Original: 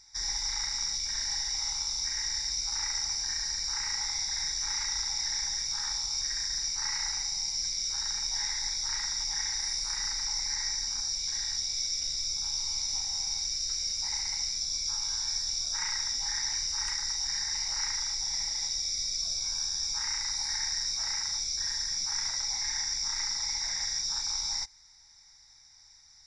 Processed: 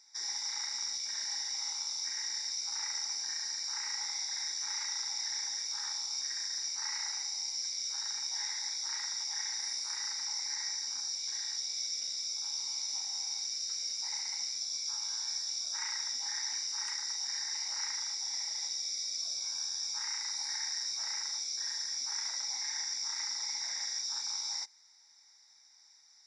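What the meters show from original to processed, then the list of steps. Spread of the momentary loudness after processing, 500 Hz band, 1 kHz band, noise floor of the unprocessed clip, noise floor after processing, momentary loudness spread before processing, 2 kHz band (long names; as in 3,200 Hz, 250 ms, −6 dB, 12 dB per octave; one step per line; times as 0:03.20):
1 LU, can't be measured, −4.5 dB, −57 dBFS, −61 dBFS, 1 LU, −4.5 dB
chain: high-pass filter 250 Hz 24 dB per octave
level −4.5 dB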